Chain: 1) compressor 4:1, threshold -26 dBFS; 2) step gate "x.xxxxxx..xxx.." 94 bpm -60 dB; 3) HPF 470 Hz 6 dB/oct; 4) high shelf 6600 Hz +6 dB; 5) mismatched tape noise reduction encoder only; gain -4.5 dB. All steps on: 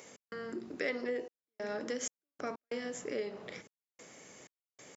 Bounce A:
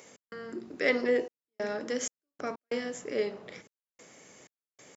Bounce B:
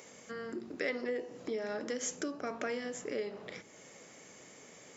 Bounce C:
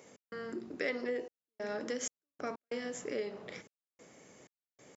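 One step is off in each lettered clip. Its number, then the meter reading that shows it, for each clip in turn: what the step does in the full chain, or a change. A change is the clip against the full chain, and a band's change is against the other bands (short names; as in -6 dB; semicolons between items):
1, mean gain reduction 2.5 dB; 2, momentary loudness spread change -2 LU; 5, momentary loudness spread change -4 LU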